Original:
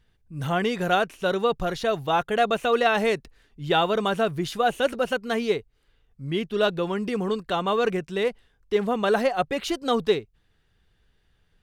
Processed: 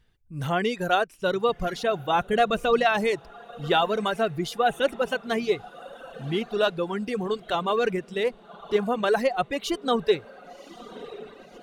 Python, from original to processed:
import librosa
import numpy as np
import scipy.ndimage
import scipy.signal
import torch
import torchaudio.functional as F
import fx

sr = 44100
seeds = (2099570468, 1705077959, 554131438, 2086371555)

y = fx.echo_diffused(x, sr, ms=1082, feedback_pct=56, wet_db=-14.5)
y = fx.dereverb_blind(y, sr, rt60_s=1.6)
y = fx.low_shelf(y, sr, hz=170.0, db=11.0, at=(2.15, 2.85))